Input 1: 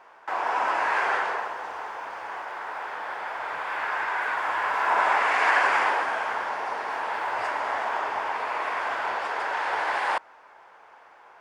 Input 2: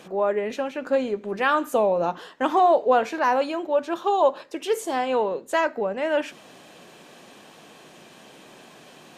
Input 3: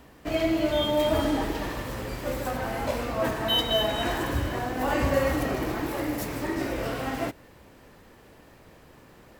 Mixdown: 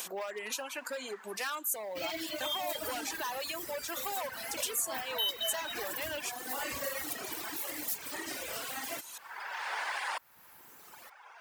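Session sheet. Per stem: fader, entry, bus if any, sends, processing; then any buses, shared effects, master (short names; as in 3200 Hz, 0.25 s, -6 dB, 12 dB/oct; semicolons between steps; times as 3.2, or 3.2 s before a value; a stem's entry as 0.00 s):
+1.0 dB, 0.00 s, no send, auto duck -19 dB, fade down 0.30 s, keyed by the second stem
0.0 dB, 0.00 s, no send, high shelf 5200 Hz +11.5 dB; compressor 2:1, threshold -26 dBFS, peak gain reduction 7 dB; hard clip -22 dBFS, distortion -15 dB
-0.5 dB, 1.70 s, no send, dry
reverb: off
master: reverb removal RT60 1.7 s; tilt +4.5 dB/oct; compressor 2:1, threshold -41 dBFS, peak gain reduction 14.5 dB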